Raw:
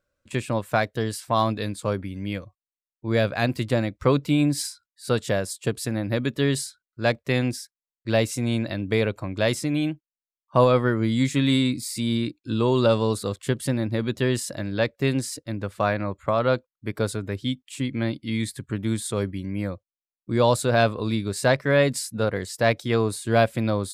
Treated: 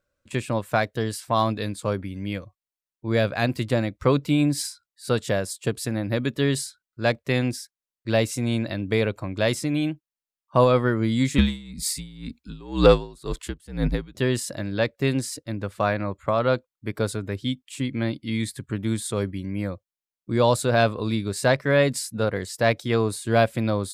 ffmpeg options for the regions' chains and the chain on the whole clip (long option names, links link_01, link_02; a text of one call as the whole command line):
ffmpeg -i in.wav -filter_complex "[0:a]asettb=1/sr,asplit=3[link_01][link_02][link_03];[link_01]atrim=end=11.384[link_04];[link_02]atrim=start=11.38:end=14.15,asetpts=PTS-STARTPTS,afade=type=in:duration=0.004:curve=qsin,afade=type=out:start_time=2.766:duration=0.004:curve=qsin,acontrast=66,afreqshift=-63,aeval=exprs='val(0)*pow(10,-27*(0.5-0.5*cos(2*PI*2*n/s))/20)':channel_layout=same[link_05];[link_03]atrim=start=14.146[link_06];[link_04][link_05]acrossfade=duration=0.004:curve1=hsin:curve2=qsin[link_07];[link_07][link_06]acrossfade=duration=0.004:curve1=qsin:curve2=hsin" out.wav